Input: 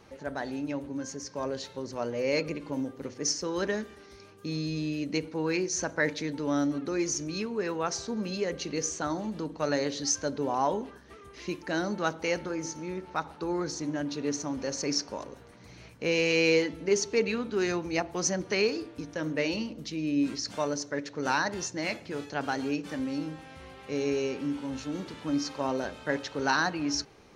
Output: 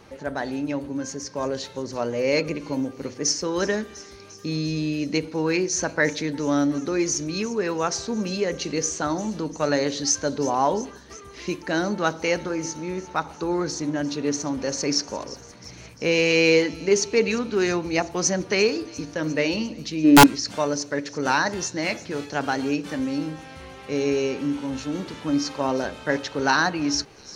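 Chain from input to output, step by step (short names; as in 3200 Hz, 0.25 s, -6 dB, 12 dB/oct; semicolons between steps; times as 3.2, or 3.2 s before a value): spectral gain 20.04–20.26, 230–2100 Hz +10 dB; thin delay 0.349 s, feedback 67%, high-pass 4500 Hz, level -15 dB; wrapped overs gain 11 dB; gain +6 dB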